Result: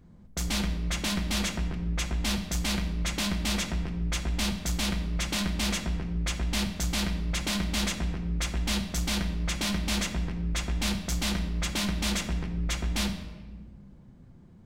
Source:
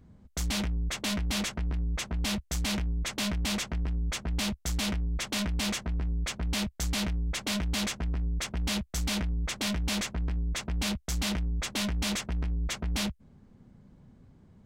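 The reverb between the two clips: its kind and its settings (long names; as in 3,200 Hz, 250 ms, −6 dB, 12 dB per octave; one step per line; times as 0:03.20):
rectangular room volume 1,100 cubic metres, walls mixed, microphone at 0.85 metres
level +1 dB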